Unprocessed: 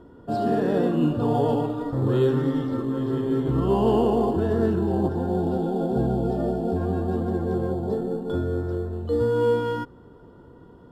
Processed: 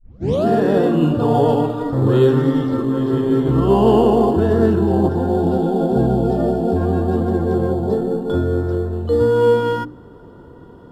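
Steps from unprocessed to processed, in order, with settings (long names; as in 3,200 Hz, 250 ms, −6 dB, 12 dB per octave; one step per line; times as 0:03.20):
turntable start at the beginning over 0.46 s
mains-hum notches 60/120/180/240/300 Hz
level +7.5 dB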